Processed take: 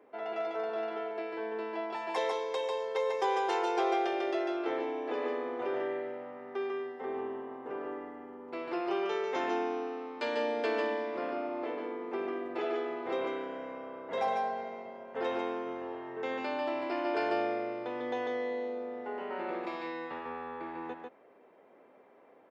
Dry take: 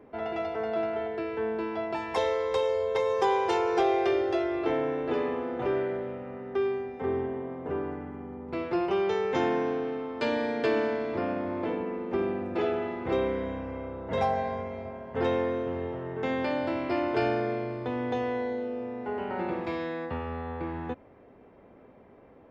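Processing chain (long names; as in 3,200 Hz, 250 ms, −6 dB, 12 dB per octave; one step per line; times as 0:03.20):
high-pass filter 400 Hz 12 dB per octave
on a send: single-tap delay 146 ms −3.5 dB
on the sum: level −4 dB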